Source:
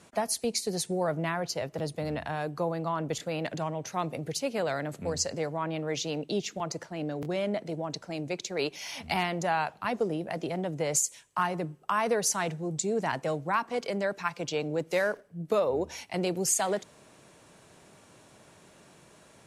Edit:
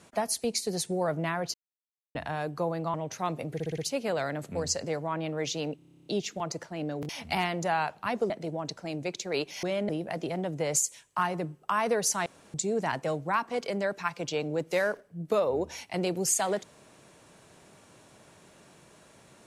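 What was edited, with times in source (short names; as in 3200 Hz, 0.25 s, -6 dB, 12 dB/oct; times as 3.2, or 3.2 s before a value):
1.54–2.15 mute
2.94–3.68 cut
4.28 stutter 0.06 s, 5 plays
6.26 stutter 0.03 s, 11 plays
7.29–7.55 swap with 8.88–10.09
12.46–12.74 room tone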